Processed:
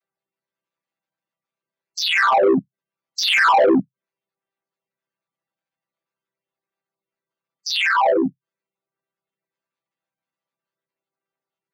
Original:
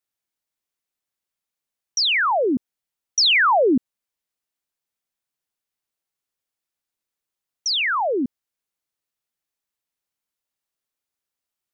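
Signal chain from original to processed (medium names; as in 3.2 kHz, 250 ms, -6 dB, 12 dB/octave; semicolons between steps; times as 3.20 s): vocoder on a held chord major triad, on C3; spectral gate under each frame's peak -15 dB strong; overdrive pedal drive 16 dB, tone 4.2 kHz, clips at -7.5 dBFS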